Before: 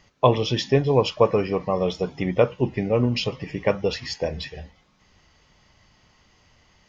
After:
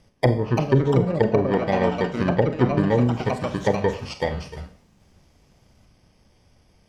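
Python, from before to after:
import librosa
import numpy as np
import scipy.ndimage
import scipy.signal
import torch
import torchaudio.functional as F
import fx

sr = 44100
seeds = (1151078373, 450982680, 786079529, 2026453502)

y = fx.bit_reversed(x, sr, seeds[0], block=32)
y = scipy.signal.sosfilt(scipy.signal.bessel(2, 3600.0, 'lowpass', norm='mag', fs=sr, output='sos'), y)
y = fx.env_lowpass_down(y, sr, base_hz=320.0, full_db=-15.5)
y = fx.echo_pitch(y, sr, ms=389, semitones=4, count=2, db_per_echo=-6.0)
y = fx.rev_schroeder(y, sr, rt60_s=0.47, comb_ms=30, drr_db=9.5)
y = y * librosa.db_to_amplitude(3.0)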